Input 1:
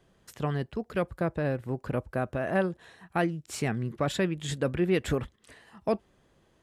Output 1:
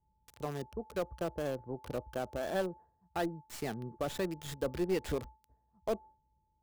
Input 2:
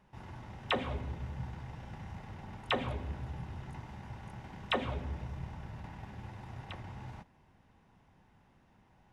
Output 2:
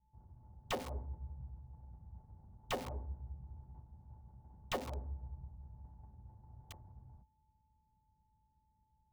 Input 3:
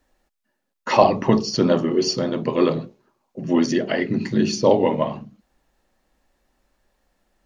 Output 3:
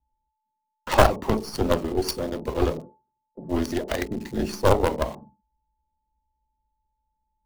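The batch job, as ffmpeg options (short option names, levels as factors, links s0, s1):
-filter_complex "[0:a]aeval=exprs='val(0)+0.00398*sin(2*PI*870*n/s)':c=same,bass=f=250:g=-9,treble=f=4000:g=-2,aeval=exprs='0.891*(cos(1*acos(clip(val(0)/0.891,-1,1)))-cos(1*PI/2))+0.0794*(cos(2*acos(clip(val(0)/0.891,-1,1)))-cos(2*PI/2))+0.01*(cos(3*acos(clip(val(0)/0.891,-1,1)))-cos(3*PI/2))+0.355*(cos(4*acos(clip(val(0)/0.891,-1,1)))-cos(4*PI/2))+0.0282*(cos(6*acos(clip(val(0)/0.891,-1,1)))-cos(6*PI/2))':c=same,acrossover=split=170|1000[s0][s1][s2];[s0]equalizer=f=61:t=o:w=0.63:g=13[s3];[s1]agate=range=0.0224:threshold=0.00794:ratio=3:detection=peak[s4];[s2]acrusher=bits=4:dc=4:mix=0:aa=0.000001[s5];[s3][s4][s5]amix=inputs=3:normalize=0,volume=0.668"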